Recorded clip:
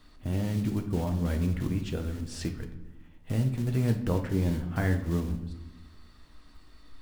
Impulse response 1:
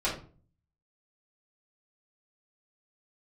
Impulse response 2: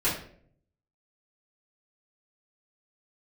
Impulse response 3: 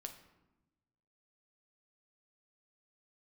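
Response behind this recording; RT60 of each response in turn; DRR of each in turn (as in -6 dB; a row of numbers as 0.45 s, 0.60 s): 3; 0.40 s, 0.55 s, 1.0 s; -8.5 dB, -11.0 dB, 4.5 dB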